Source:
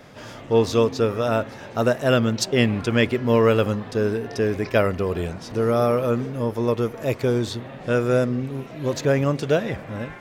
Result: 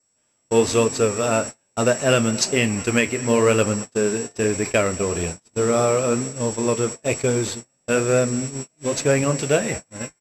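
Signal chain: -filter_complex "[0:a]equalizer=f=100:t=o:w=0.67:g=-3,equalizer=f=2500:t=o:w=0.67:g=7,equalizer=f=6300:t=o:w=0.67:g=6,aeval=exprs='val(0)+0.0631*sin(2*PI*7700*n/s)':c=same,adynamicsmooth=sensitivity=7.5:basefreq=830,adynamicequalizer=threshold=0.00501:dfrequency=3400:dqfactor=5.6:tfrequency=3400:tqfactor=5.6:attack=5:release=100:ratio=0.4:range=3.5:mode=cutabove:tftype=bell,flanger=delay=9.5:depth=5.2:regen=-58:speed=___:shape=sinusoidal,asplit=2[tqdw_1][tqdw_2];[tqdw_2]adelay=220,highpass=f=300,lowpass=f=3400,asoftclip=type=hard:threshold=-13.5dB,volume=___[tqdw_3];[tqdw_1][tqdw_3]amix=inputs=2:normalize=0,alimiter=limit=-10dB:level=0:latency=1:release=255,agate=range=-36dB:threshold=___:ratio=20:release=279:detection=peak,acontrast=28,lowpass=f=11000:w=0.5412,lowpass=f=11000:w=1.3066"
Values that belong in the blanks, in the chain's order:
1.1, -20dB, -31dB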